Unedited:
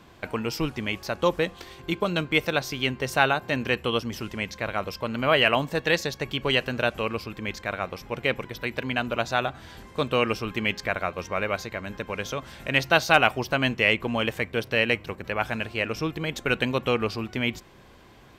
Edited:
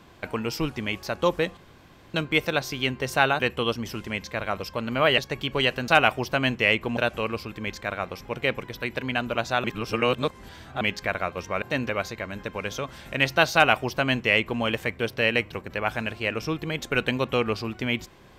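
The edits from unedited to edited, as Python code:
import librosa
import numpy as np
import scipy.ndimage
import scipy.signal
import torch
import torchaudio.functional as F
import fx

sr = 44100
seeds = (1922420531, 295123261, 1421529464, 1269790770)

y = fx.edit(x, sr, fx.room_tone_fill(start_s=1.57, length_s=0.57),
    fx.move(start_s=3.4, length_s=0.27, to_s=11.43),
    fx.cut(start_s=5.45, length_s=0.63),
    fx.reverse_span(start_s=9.45, length_s=1.17),
    fx.duplicate(start_s=13.07, length_s=1.09, to_s=6.78), tone=tone)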